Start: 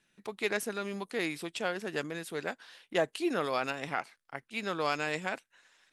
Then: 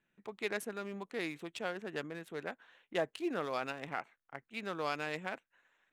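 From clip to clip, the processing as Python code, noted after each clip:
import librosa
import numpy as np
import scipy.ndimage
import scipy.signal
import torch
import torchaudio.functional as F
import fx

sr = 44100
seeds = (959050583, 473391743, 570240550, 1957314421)

y = fx.wiener(x, sr, points=9)
y = F.gain(torch.from_numpy(y), -5.0).numpy()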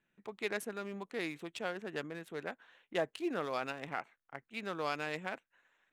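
y = x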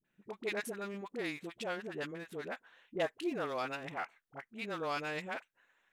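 y = fx.dispersion(x, sr, late='highs', ms=49.0, hz=600.0)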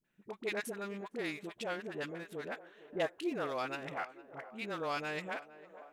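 y = fx.echo_banded(x, sr, ms=459, feedback_pct=73, hz=610.0, wet_db=-14.5)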